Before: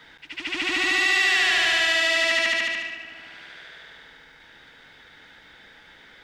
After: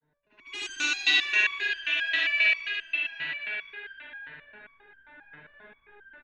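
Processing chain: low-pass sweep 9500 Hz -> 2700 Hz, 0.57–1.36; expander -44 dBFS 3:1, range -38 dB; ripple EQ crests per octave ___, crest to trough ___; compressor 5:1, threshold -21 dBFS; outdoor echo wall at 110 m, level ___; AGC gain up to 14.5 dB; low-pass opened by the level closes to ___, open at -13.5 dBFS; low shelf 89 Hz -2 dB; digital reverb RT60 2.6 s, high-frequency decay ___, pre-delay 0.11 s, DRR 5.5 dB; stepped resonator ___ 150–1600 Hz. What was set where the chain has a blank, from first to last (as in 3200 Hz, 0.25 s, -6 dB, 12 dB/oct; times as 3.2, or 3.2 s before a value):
1.5, 8 dB, -8 dB, 720 Hz, 0.85×, 7.5 Hz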